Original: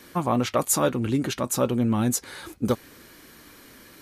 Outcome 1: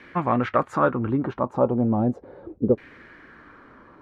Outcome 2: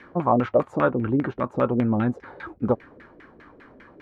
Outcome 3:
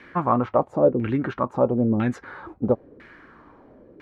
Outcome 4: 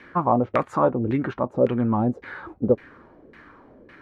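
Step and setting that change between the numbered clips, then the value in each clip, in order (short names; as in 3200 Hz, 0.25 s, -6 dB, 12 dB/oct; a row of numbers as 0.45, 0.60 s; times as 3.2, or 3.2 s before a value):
LFO low-pass, rate: 0.36, 5, 1, 1.8 Hz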